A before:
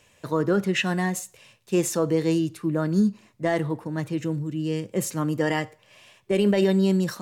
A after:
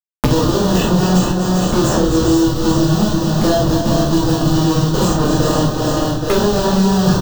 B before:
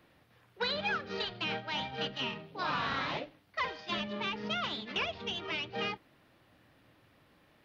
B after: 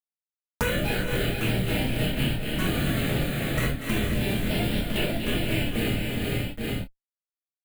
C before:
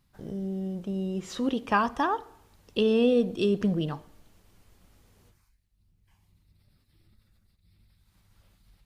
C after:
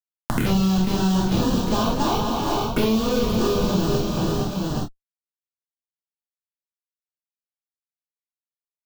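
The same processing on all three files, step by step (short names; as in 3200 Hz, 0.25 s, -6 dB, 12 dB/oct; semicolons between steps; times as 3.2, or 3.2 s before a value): opening faded in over 0.53 s; notches 50/100/150/200/250/300 Hz; dynamic EQ 140 Hz, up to -5 dB, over -44 dBFS, Q 3.3; in parallel at -1 dB: compressor 16:1, threshold -35 dBFS; on the sum: Schmitt trigger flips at -28 dBFS; envelope phaser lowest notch 410 Hz, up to 2200 Hz, full sweep at -28 dBFS; doubler 27 ms -8 dB; tapped delay 0.238/0.389/0.465/0.824 s -10.5/-10/-9/-15 dB; non-linear reverb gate 90 ms flat, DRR -5.5 dB; three-band squash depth 100%; gain +3.5 dB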